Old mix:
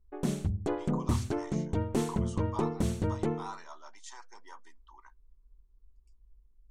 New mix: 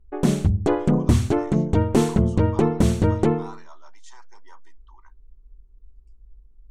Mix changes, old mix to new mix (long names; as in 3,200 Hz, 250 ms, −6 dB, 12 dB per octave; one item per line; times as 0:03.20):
background +11.5 dB
master: add high-shelf EQ 5,800 Hz −4 dB